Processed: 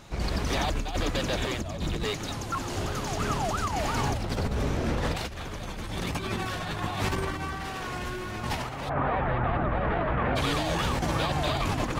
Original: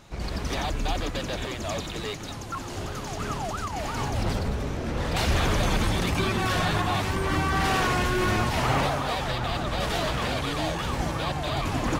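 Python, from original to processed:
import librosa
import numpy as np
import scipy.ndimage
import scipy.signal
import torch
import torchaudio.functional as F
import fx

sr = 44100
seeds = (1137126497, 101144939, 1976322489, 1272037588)

y = fx.low_shelf(x, sr, hz=370.0, db=11.0, at=(1.61, 2.04))
y = fx.lowpass(y, sr, hz=2000.0, slope=24, at=(8.88, 10.35), fade=0.02)
y = fx.over_compress(y, sr, threshold_db=-28.0, ratio=-0.5)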